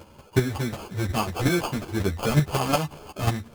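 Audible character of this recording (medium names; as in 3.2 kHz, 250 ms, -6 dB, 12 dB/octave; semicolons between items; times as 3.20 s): chopped level 5.5 Hz, depth 60%, duty 10%; aliases and images of a low sample rate 1.9 kHz, jitter 0%; a shimmering, thickened sound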